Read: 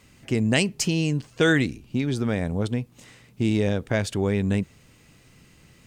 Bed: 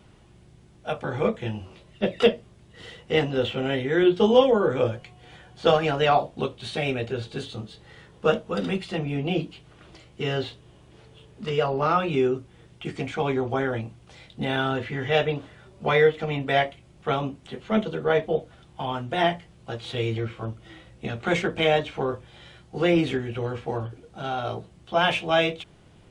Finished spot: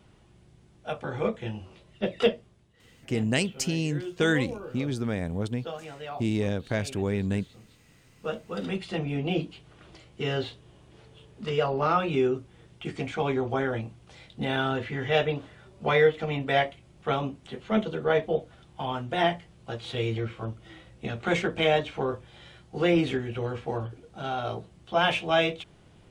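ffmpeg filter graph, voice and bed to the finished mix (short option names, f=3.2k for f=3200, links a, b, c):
-filter_complex "[0:a]adelay=2800,volume=-4.5dB[a];[1:a]volume=12dB,afade=t=out:st=2.31:d=0.51:silence=0.199526,afade=t=in:st=8.1:d=0.85:silence=0.158489[b];[a][b]amix=inputs=2:normalize=0"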